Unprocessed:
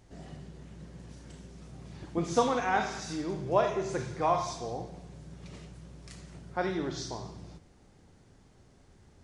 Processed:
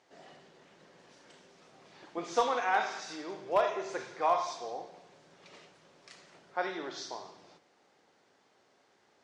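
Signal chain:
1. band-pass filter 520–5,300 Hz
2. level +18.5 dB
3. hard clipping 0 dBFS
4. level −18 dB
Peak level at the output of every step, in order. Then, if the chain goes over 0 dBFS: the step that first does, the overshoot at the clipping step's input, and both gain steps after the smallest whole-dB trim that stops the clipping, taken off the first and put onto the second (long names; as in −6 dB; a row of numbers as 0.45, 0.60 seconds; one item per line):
−14.0, +4.5, 0.0, −18.0 dBFS
step 2, 4.5 dB
step 2 +13.5 dB, step 4 −13 dB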